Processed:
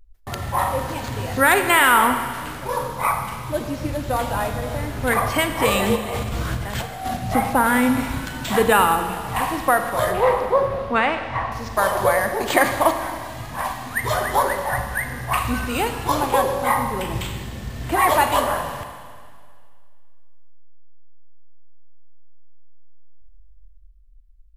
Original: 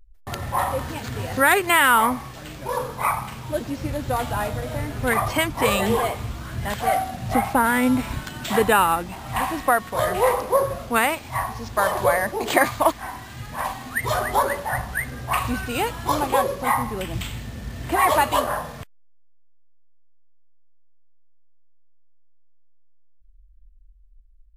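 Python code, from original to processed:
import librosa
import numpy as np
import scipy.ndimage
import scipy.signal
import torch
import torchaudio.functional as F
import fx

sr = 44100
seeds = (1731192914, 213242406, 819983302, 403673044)

y = fx.over_compress(x, sr, threshold_db=-32.0, ratio=-1.0, at=(5.95, 7.16), fade=0.02)
y = fx.bessel_lowpass(y, sr, hz=3400.0, order=4, at=(10.12, 11.52))
y = fx.rev_schroeder(y, sr, rt60_s=2.0, comb_ms=33, drr_db=7.0)
y = y * librosa.db_to_amplitude(1.0)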